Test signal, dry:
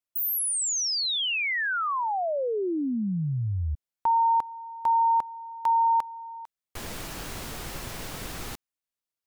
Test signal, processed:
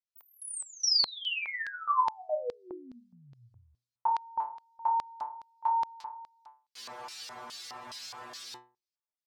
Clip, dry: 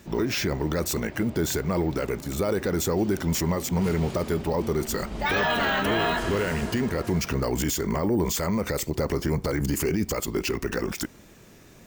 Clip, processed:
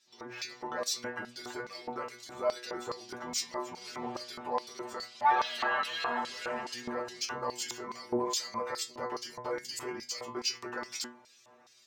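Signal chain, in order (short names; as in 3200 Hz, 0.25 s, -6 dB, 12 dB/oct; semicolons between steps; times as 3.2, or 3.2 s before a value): metallic resonator 120 Hz, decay 0.41 s, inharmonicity 0.002; AGC gain up to 7 dB; LFO band-pass square 2.4 Hz 940–4600 Hz; gain +8 dB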